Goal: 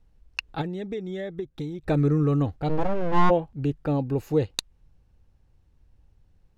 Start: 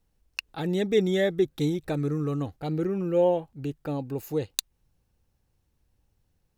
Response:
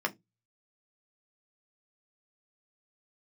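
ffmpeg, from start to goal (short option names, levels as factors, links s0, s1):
-filter_complex "[0:a]lowshelf=f=83:g=9.5,asettb=1/sr,asplit=3[s0][s1][s2];[s0]atrim=end=0.614[s3];[s1]atrim=start=0.61:end=1.87,asetpts=PTS-STARTPTS,afade=t=in:d=0.004:c=qsin,afade=t=out:st=1.256:d=0.004:c=qsin,acompressor=threshold=0.02:ratio=12[s4];[s2]atrim=start=1.866[s5];[s3][s4]acrossfade=d=0.004:c1=hsin:c2=qsin[s6];[s6][s5]acrossfade=d=0.004:c1=qsin:c2=hsin,asplit=3[s7][s8][s9];[s7]afade=t=out:st=2.68:d=0.02[s10];[s8]aeval=exprs='abs(val(0))':c=same,afade=t=in:st=2.68:d=0.02,afade=t=out:st=3.29:d=0.02[s11];[s9]afade=t=in:st=3.29:d=0.02[s12];[s10][s11][s12]amix=inputs=3:normalize=0,aemphasis=mode=reproduction:type=50fm,volume=1.68"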